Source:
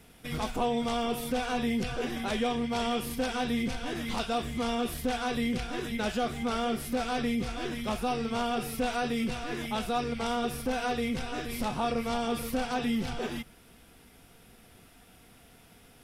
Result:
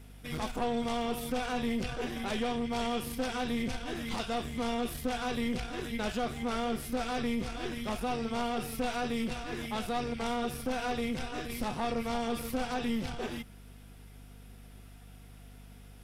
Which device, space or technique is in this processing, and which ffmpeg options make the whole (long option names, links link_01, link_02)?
valve amplifier with mains hum: -af "aeval=exprs='(tanh(17.8*val(0)+0.55)-tanh(0.55))/17.8':channel_layout=same,aeval=exprs='val(0)+0.00316*(sin(2*PI*50*n/s)+sin(2*PI*2*50*n/s)/2+sin(2*PI*3*50*n/s)/3+sin(2*PI*4*50*n/s)/4+sin(2*PI*5*50*n/s)/5)':channel_layout=same"